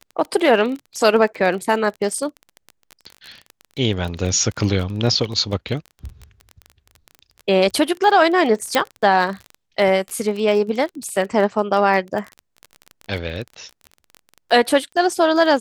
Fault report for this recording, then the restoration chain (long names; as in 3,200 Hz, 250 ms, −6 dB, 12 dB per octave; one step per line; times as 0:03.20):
surface crackle 23 per second −26 dBFS
0:08.75: click −3 dBFS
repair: click removal